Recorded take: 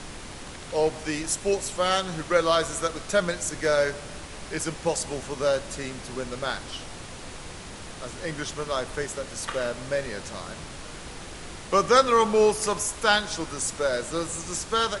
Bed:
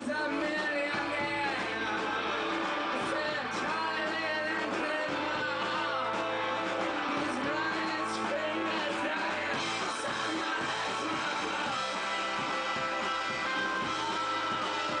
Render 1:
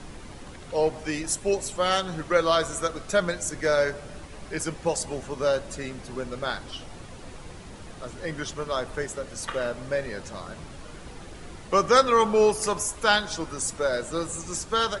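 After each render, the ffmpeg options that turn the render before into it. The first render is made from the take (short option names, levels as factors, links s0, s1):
-af "afftdn=nr=8:nf=-40"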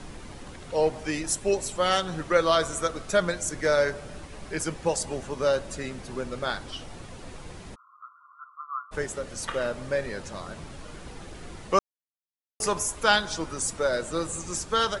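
-filter_complex "[0:a]asplit=3[s0][s1][s2];[s0]afade=t=out:st=7.74:d=0.02[s3];[s1]asuperpass=centerf=1200:order=20:qfactor=2.9,afade=t=in:st=7.74:d=0.02,afade=t=out:st=8.91:d=0.02[s4];[s2]afade=t=in:st=8.91:d=0.02[s5];[s3][s4][s5]amix=inputs=3:normalize=0,asplit=3[s6][s7][s8];[s6]atrim=end=11.79,asetpts=PTS-STARTPTS,afade=t=out:st=11.786:d=0.004:c=hsin[s9];[s7]atrim=start=11.79:end=12.6,asetpts=PTS-STARTPTS,volume=0[s10];[s8]atrim=start=12.6,asetpts=PTS-STARTPTS,afade=t=in:d=0.004:c=hsin[s11];[s9][s10][s11]concat=n=3:v=0:a=1"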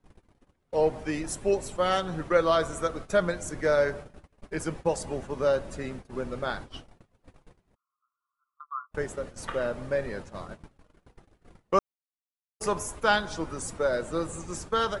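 -af "agate=range=0.0282:threshold=0.0141:ratio=16:detection=peak,equalizer=f=6600:w=0.35:g=-8.5"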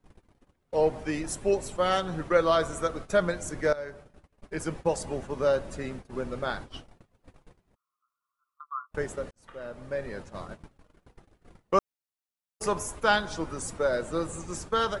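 -filter_complex "[0:a]asplit=3[s0][s1][s2];[s0]atrim=end=3.73,asetpts=PTS-STARTPTS,afade=t=out:st=3.726:d=0.004:c=hsin:silence=0.149624[s3];[s1]atrim=start=3.73:end=9.31,asetpts=PTS-STARTPTS,afade=t=in:d=1.01:silence=0.149624,afade=t=out:st=5.576:d=0.004:c=hsin[s4];[s2]atrim=start=9.31,asetpts=PTS-STARTPTS,afade=t=in:d=1.08[s5];[s3][s4][s5]concat=n=3:v=0:a=1"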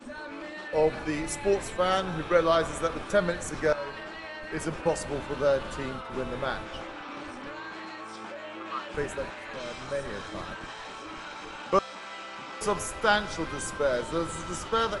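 -filter_complex "[1:a]volume=0.398[s0];[0:a][s0]amix=inputs=2:normalize=0"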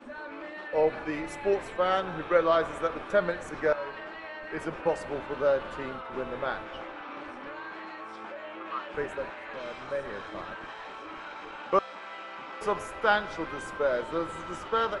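-af "bass=f=250:g=-8,treble=f=4000:g=-15"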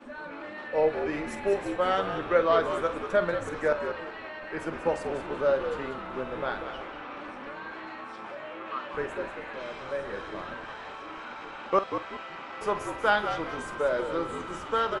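-filter_complex "[0:a]asplit=2[s0][s1];[s1]adelay=47,volume=0.224[s2];[s0][s2]amix=inputs=2:normalize=0,asplit=2[s3][s4];[s4]asplit=4[s5][s6][s7][s8];[s5]adelay=189,afreqshift=-74,volume=0.376[s9];[s6]adelay=378,afreqshift=-148,volume=0.112[s10];[s7]adelay=567,afreqshift=-222,volume=0.0339[s11];[s8]adelay=756,afreqshift=-296,volume=0.0101[s12];[s9][s10][s11][s12]amix=inputs=4:normalize=0[s13];[s3][s13]amix=inputs=2:normalize=0"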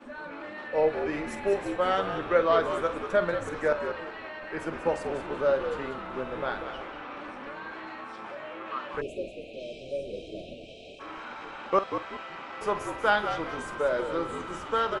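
-filter_complex "[0:a]asplit=3[s0][s1][s2];[s0]afade=t=out:st=9:d=0.02[s3];[s1]asuperstop=centerf=1300:order=20:qfactor=0.76,afade=t=in:st=9:d=0.02,afade=t=out:st=10.99:d=0.02[s4];[s2]afade=t=in:st=10.99:d=0.02[s5];[s3][s4][s5]amix=inputs=3:normalize=0"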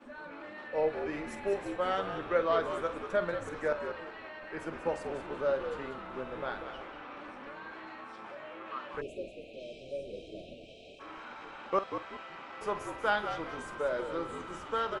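-af "volume=0.531"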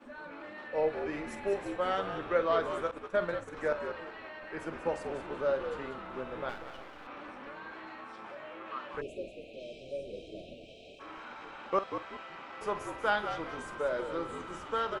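-filter_complex "[0:a]asettb=1/sr,asplit=3[s0][s1][s2];[s0]atrim=end=2.914[s3];[s1]atrim=start=2.91:end=3.57,asetpts=PTS-STARTPTS,afade=t=in:d=0.004:c=qsin,afade=t=out:st=0.656:d=0.004:c=qsin,agate=range=0.0224:threshold=0.0158:ratio=3:release=100:detection=peak[s4];[s2]atrim=start=3.566[s5];[s3][s4]acrossfade=d=0.004:c1=hsin:c2=qsin[s6];[s6][s5]acrossfade=d=0.004:c1=qsin:c2=hsin,asettb=1/sr,asplit=3[s7][s8][s9];[s7]atrim=end=6.494[s10];[s8]atrim=start=6.49:end=7.07,asetpts=PTS-STARTPTS,afade=t=in:d=0.004:c=qsin,afade=t=out:st=0.576:d=0.004:c=qsin,aeval=exprs='if(lt(val(0),0),0.251*val(0),val(0))':c=same[s11];[s9]atrim=start=7.066[s12];[s10][s11]acrossfade=d=0.004:c1=hsin:c2=qsin[s13];[s13][s12]acrossfade=d=0.004:c1=qsin:c2=hsin"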